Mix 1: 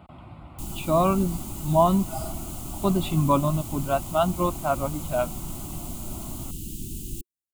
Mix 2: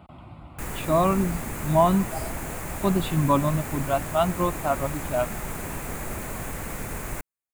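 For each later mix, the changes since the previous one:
background: remove Chebyshev band-stop 360–2900 Hz, order 5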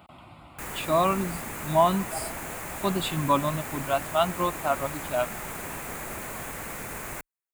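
background: add treble shelf 3.9 kHz -10.5 dB; master: add tilt EQ +2.5 dB/octave

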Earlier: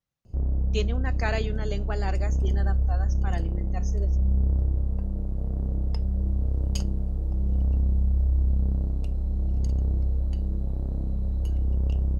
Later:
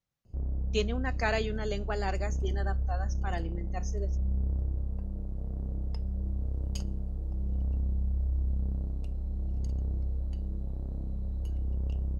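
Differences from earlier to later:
background -7.5 dB; reverb: on, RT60 0.50 s

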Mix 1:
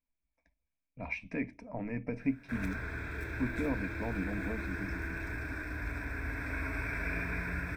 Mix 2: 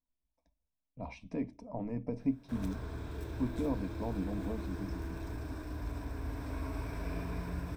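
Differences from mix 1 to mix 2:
background: remove Butterworth band-stop 2.9 kHz, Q 6.9; master: add high-order bell 1.9 kHz -15.5 dB 1.1 oct

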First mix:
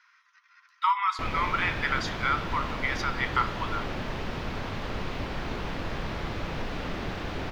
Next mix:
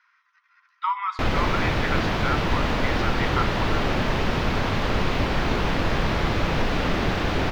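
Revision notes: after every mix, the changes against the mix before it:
speech: add low-pass 2.2 kHz 6 dB/octave; background +10.0 dB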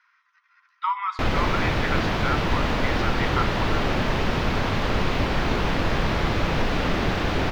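no change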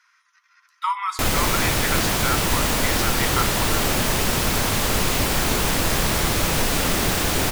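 master: remove distance through air 260 m

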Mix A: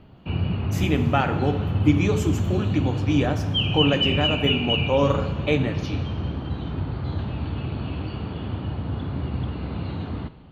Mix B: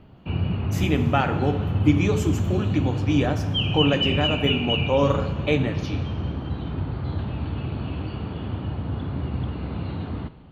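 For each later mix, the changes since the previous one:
background: add distance through air 83 m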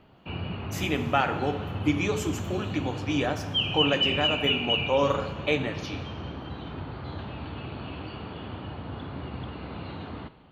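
master: add bass shelf 290 Hz -12 dB

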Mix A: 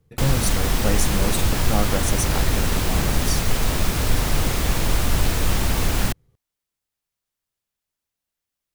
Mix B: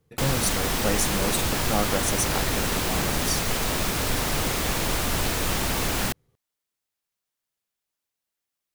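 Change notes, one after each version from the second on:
master: add bass shelf 130 Hz -11.5 dB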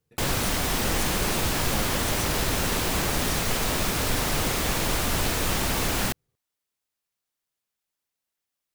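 speech -11.0 dB

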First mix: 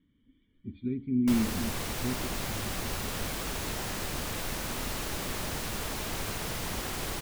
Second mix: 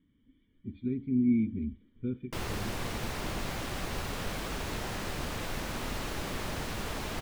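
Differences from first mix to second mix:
background: entry +1.05 s; master: add treble shelf 5.8 kHz -10 dB

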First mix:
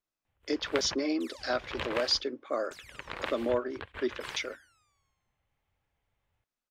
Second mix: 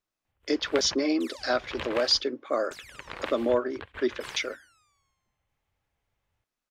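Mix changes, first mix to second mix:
speech +4.5 dB; second sound +4.5 dB

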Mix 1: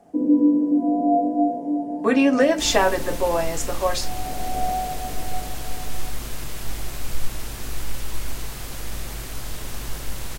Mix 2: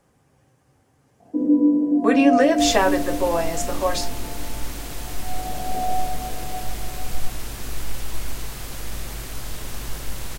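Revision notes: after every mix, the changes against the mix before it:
first sound: entry +1.20 s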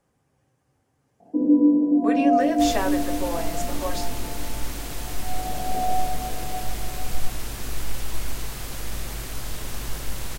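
speech -8.0 dB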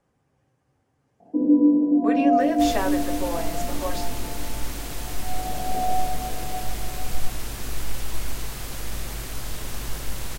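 speech: add treble shelf 6.8 kHz -8.5 dB

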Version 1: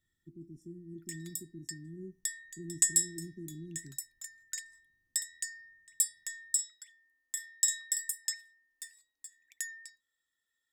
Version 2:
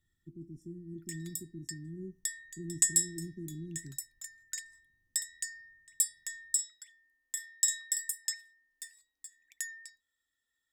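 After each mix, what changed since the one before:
master: add bass shelf 150 Hz +7 dB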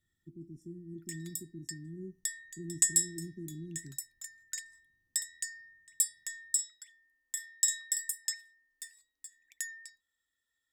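speech: add bass shelf 68 Hz -8.5 dB

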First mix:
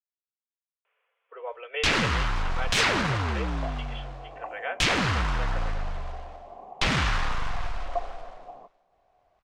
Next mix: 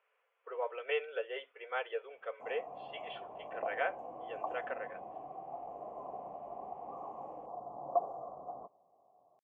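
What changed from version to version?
speech: entry -0.85 s; first sound: muted; master: add treble shelf 2.8 kHz -10.5 dB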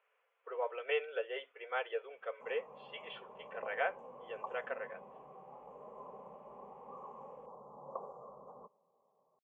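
background: add static phaser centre 470 Hz, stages 8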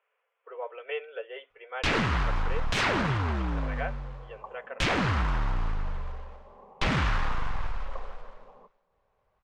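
first sound: unmuted

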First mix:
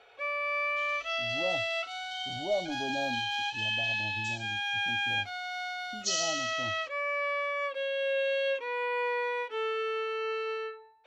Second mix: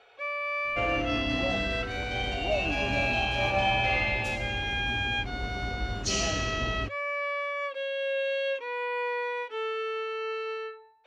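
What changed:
second sound: remove brick-wall FIR band-pass 2.9–8.2 kHz; master: add low-pass 10 kHz 12 dB/octave

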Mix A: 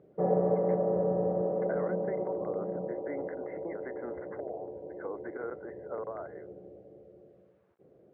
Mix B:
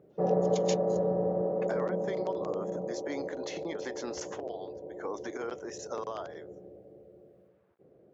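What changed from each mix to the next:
speech: remove rippled Chebyshev low-pass 2.1 kHz, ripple 6 dB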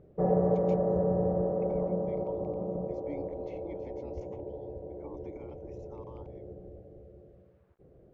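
speech: add vowel filter u; master: remove high-pass 190 Hz 12 dB/octave

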